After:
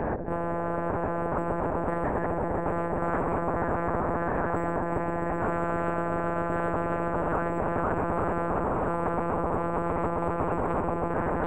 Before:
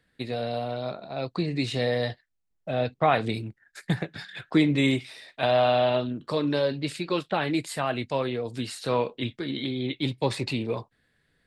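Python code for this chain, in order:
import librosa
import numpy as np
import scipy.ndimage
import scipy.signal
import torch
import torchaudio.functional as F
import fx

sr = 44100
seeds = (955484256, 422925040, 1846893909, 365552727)

p1 = fx.delta_mod(x, sr, bps=16000, step_db=-27.5)
p2 = scipy.signal.sosfilt(scipy.signal.butter(4, 84.0, 'highpass', fs=sr, output='sos'), p1)
p3 = fx.step_gate(p2, sr, bpm=104, pattern='x.xxxxxxxxx..xxx', floor_db=-60.0, edge_ms=4.5)
p4 = 10.0 ** (-23.5 / 20.0) * np.tanh(p3 / 10.0 ** (-23.5 / 20.0))
p5 = p3 + F.gain(torch.from_numpy(p4), -7.0).numpy()
p6 = fx.ladder_lowpass(p5, sr, hz=580.0, resonance_pct=45)
p7 = p6 + fx.echo_swell(p6, sr, ms=132, loudest=5, wet_db=-8.0, dry=0)
p8 = fx.lpc_monotone(p7, sr, seeds[0], pitch_hz=170.0, order=8)
y = fx.spectral_comp(p8, sr, ratio=10.0)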